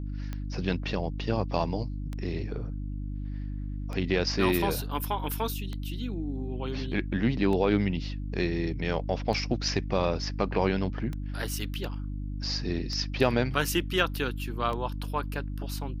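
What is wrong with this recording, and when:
mains hum 50 Hz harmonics 6 −34 dBFS
scratch tick 33 1/3 rpm −22 dBFS

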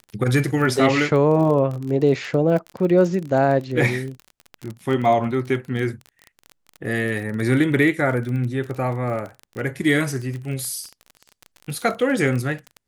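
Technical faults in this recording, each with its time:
surface crackle 27 per second −27 dBFS

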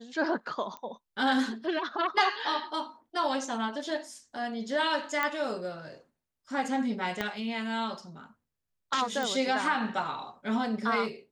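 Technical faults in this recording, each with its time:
0:00.77: click −27 dBFS
0:05.23: click −14 dBFS
0:07.21: click −16 dBFS
0:09.23: click

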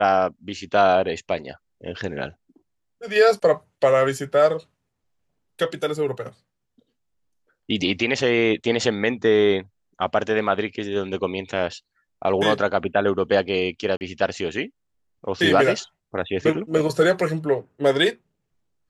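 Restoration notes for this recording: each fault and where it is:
0:13.97–0:14.01: drop-out 39 ms

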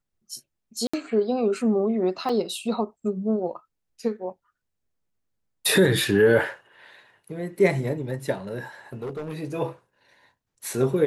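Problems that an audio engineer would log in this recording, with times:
0:00.87–0:00.94: drop-out 65 ms
0:02.29: drop-out 4.2 ms
0:08.93–0:09.35: clipping −28 dBFS

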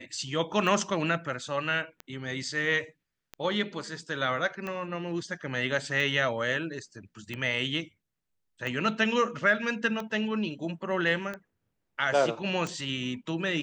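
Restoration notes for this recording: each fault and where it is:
scratch tick 45 rpm

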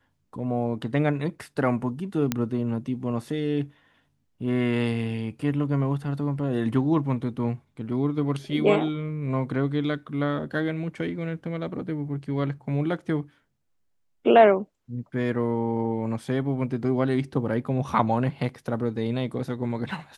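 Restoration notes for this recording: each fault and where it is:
0:02.32: click −9 dBFS

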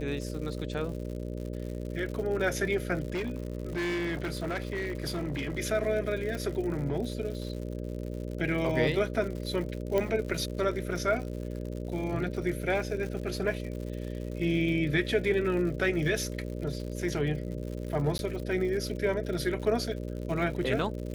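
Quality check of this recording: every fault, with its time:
mains buzz 60 Hz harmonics 10 −36 dBFS
surface crackle 120 per second −37 dBFS
0:03.10–0:05.59: clipping −28 dBFS
0:06.35: click
0:09.98: click −16 dBFS
0:18.18–0:18.19: drop-out 11 ms

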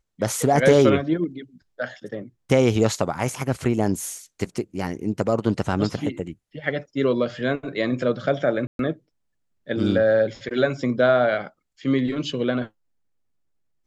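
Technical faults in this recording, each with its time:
0:08.67–0:08.79: drop-out 122 ms

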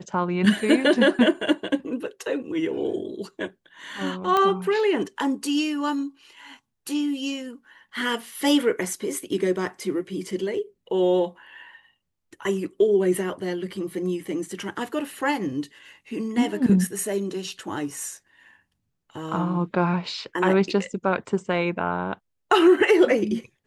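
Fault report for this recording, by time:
0:04.37: click −10 dBFS

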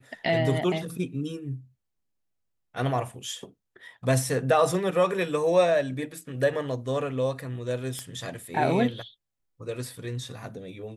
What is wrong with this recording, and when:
0:07.99: click −19 dBFS

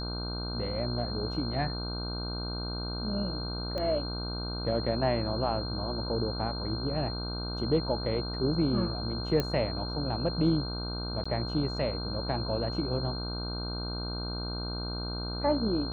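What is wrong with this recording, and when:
mains buzz 60 Hz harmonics 26 −36 dBFS
whistle 4,200 Hz −38 dBFS
0:03.78: click −23 dBFS
0:09.40: click −15 dBFS
0:11.24–0:11.26: drop-out 15 ms

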